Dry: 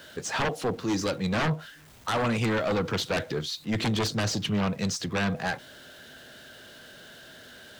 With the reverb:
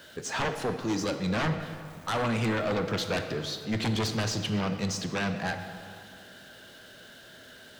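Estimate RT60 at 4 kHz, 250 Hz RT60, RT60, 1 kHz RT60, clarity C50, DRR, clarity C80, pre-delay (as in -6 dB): 1.6 s, 2.5 s, 2.5 s, 2.5 s, 8.0 dB, 7.0 dB, 9.0 dB, 17 ms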